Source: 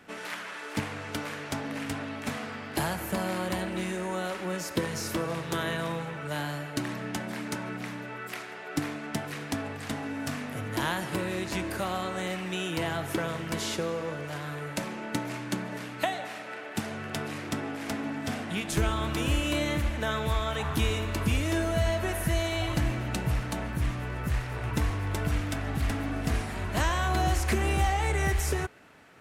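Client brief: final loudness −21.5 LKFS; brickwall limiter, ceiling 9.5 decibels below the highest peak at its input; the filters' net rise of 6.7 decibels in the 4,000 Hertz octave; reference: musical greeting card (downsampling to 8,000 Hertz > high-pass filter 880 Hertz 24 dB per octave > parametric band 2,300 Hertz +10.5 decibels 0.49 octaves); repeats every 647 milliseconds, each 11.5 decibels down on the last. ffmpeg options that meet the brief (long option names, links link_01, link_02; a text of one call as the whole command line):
ffmpeg -i in.wav -af "equalizer=frequency=4000:width_type=o:gain=6,alimiter=limit=-21.5dB:level=0:latency=1,aecho=1:1:647|1294|1941:0.266|0.0718|0.0194,aresample=8000,aresample=44100,highpass=frequency=880:width=0.5412,highpass=frequency=880:width=1.3066,equalizer=frequency=2300:width_type=o:width=0.49:gain=10.5,volume=10.5dB" out.wav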